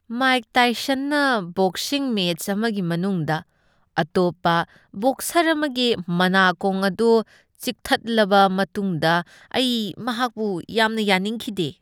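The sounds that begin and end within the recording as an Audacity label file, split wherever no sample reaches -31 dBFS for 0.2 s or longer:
3.970000	4.640000	sound
4.940000	7.220000	sound
7.620000	9.220000	sound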